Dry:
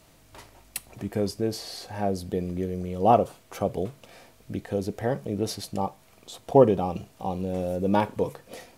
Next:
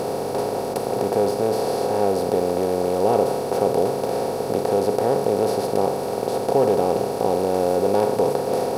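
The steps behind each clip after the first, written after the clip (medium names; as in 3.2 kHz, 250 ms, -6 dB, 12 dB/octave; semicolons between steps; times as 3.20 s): spectral levelling over time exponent 0.2; peaking EQ 440 Hz +7 dB 0.32 oct; band-stop 1.2 kHz, Q 21; trim -8 dB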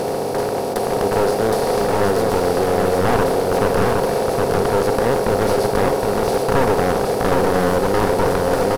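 one-sided wavefolder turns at -19.5 dBFS; delay 766 ms -3 dB; waveshaping leveller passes 1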